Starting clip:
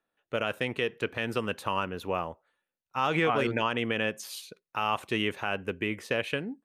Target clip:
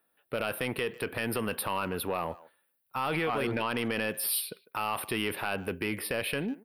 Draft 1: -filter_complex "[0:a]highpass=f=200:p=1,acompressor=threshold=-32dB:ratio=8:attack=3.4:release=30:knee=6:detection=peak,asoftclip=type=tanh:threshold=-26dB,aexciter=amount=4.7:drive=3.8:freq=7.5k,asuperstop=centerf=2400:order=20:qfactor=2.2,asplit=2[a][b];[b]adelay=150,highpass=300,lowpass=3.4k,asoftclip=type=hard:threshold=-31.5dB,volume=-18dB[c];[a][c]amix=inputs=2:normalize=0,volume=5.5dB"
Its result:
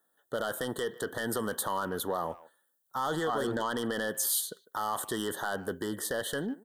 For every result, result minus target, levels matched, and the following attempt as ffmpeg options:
8000 Hz band +3.5 dB; 125 Hz band -3.0 dB
-filter_complex "[0:a]highpass=f=200:p=1,acompressor=threshold=-32dB:ratio=8:attack=3.4:release=30:knee=6:detection=peak,asoftclip=type=tanh:threshold=-26dB,aexciter=amount=4.7:drive=3.8:freq=7.5k,asuperstop=centerf=7000:order=20:qfactor=2.2,asplit=2[a][b];[b]adelay=150,highpass=300,lowpass=3.4k,asoftclip=type=hard:threshold=-31.5dB,volume=-18dB[c];[a][c]amix=inputs=2:normalize=0,volume=5.5dB"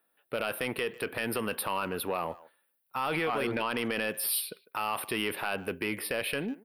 125 Hz band -4.0 dB
-filter_complex "[0:a]highpass=f=62:p=1,acompressor=threshold=-32dB:ratio=8:attack=3.4:release=30:knee=6:detection=peak,asoftclip=type=tanh:threshold=-26dB,aexciter=amount=4.7:drive=3.8:freq=7.5k,asuperstop=centerf=7000:order=20:qfactor=2.2,asplit=2[a][b];[b]adelay=150,highpass=300,lowpass=3.4k,asoftclip=type=hard:threshold=-31.5dB,volume=-18dB[c];[a][c]amix=inputs=2:normalize=0,volume=5.5dB"

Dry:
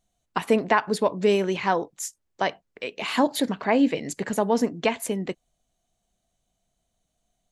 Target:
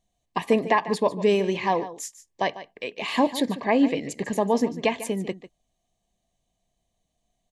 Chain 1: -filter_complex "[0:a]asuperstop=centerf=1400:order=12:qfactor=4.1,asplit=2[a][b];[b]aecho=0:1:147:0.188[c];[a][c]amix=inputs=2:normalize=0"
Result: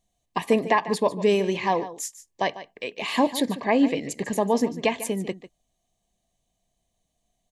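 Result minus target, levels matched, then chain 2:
8000 Hz band +3.0 dB
-filter_complex "[0:a]asuperstop=centerf=1400:order=12:qfactor=4.1,highshelf=f=8.8k:g=-7.5,asplit=2[a][b];[b]aecho=0:1:147:0.188[c];[a][c]amix=inputs=2:normalize=0"

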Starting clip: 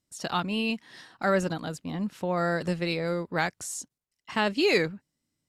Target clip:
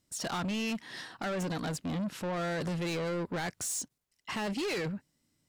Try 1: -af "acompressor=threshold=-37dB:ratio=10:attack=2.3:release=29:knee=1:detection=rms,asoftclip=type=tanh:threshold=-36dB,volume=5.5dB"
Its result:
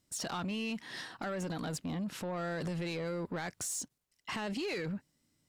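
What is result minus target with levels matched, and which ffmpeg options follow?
compressor: peak gain reduction +8 dB
-af "acompressor=threshold=-28dB:ratio=10:attack=2.3:release=29:knee=1:detection=rms,asoftclip=type=tanh:threshold=-36dB,volume=5.5dB"

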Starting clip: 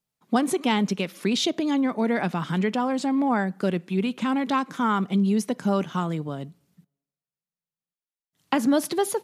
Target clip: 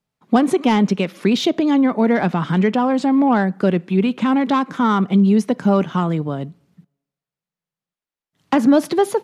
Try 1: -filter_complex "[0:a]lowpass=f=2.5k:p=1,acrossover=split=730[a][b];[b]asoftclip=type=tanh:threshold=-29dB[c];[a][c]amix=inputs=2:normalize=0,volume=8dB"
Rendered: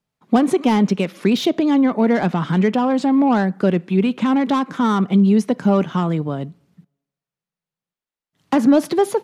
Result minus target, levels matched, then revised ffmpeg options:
soft clip: distortion +6 dB
-filter_complex "[0:a]lowpass=f=2.5k:p=1,acrossover=split=730[a][b];[b]asoftclip=type=tanh:threshold=-23dB[c];[a][c]amix=inputs=2:normalize=0,volume=8dB"

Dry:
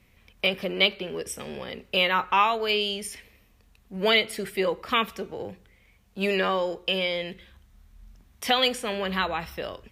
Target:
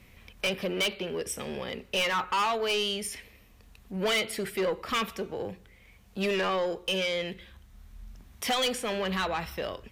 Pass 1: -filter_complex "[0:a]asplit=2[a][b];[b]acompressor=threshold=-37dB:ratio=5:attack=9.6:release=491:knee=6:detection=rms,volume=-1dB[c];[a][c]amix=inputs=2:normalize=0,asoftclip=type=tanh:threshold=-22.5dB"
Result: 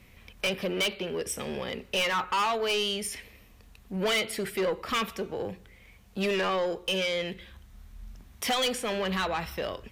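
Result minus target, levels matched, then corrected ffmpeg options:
compressor: peak gain reduction -8.5 dB
-filter_complex "[0:a]asplit=2[a][b];[b]acompressor=threshold=-47.5dB:ratio=5:attack=9.6:release=491:knee=6:detection=rms,volume=-1dB[c];[a][c]amix=inputs=2:normalize=0,asoftclip=type=tanh:threshold=-22.5dB"

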